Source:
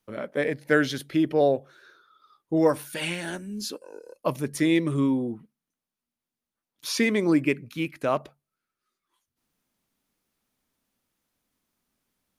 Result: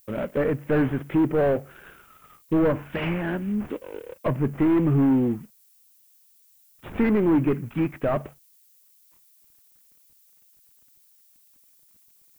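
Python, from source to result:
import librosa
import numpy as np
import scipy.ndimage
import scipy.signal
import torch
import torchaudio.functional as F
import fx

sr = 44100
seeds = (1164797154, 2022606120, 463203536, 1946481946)

y = fx.cvsd(x, sr, bps=16000)
y = 10.0 ** (-24.0 / 20.0) * np.tanh(y / 10.0 ** (-24.0 / 20.0))
y = fx.low_shelf(y, sr, hz=280.0, db=8.0)
y = fx.env_lowpass_down(y, sr, base_hz=1900.0, full_db=-26.5)
y = fx.dmg_noise_colour(y, sr, seeds[0], colour='violet', level_db=-63.0)
y = y * librosa.db_to_amplitude(4.5)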